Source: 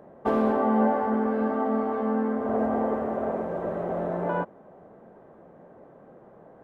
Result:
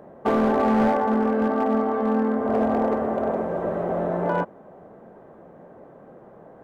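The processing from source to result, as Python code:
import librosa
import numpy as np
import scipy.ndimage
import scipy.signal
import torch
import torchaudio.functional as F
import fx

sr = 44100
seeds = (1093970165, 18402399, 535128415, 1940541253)

y = np.clip(x, -10.0 ** (-19.0 / 20.0), 10.0 ** (-19.0 / 20.0))
y = y * librosa.db_to_amplitude(4.0)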